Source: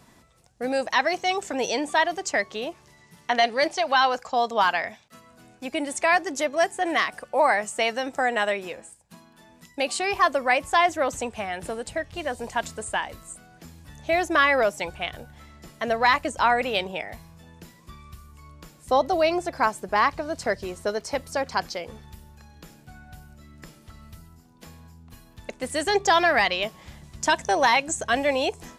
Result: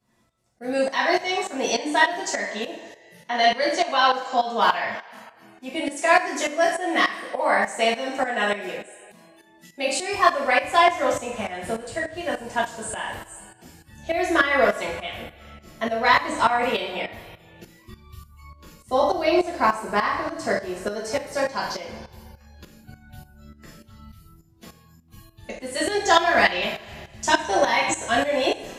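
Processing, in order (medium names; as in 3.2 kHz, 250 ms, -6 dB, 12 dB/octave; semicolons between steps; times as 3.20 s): two-slope reverb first 0.49 s, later 1.9 s, from -16 dB, DRR -5.5 dB; spectral noise reduction 12 dB; tremolo saw up 3.4 Hz, depth 75%; trim -2 dB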